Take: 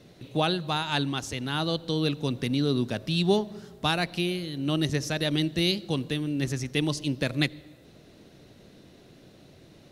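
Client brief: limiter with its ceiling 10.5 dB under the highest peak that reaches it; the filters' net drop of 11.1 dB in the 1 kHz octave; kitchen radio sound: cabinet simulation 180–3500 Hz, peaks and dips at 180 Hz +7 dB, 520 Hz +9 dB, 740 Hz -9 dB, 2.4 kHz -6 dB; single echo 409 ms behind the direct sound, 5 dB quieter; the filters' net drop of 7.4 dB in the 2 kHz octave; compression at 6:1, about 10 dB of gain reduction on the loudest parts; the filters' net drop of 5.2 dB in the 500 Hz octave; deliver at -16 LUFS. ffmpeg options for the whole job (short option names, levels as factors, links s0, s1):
-af "equalizer=f=500:t=o:g=-8.5,equalizer=f=1000:t=o:g=-6.5,equalizer=f=2000:t=o:g=-4.5,acompressor=threshold=0.02:ratio=6,alimiter=level_in=2.66:limit=0.0631:level=0:latency=1,volume=0.376,highpass=180,equalizer=f=180:t=q:w=4:g=7,equalizer=f=520:t=q:w=4:g=9,equalizer=f=740:t=q:w=4:g=-9,equalizer=f=2400:t=q:w=4:g=-6,lowpass=f=3500:w=0.5412,lowpass=f=3500:w=1.3066,aecho=1:1:409:0.562,volume=20"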